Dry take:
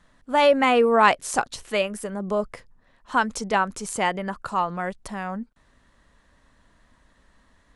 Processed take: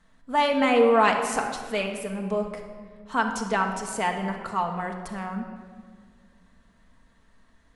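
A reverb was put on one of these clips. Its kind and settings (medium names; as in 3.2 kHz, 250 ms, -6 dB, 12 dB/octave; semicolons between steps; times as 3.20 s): simulated room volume 2600 m³, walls mixed, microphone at 1.6 m; trim -4.5 dB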